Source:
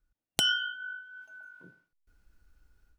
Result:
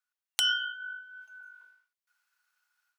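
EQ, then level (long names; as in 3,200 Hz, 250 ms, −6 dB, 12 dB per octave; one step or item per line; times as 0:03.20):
high-pass filter 990 Hz 24 dB per octave
0.0 dB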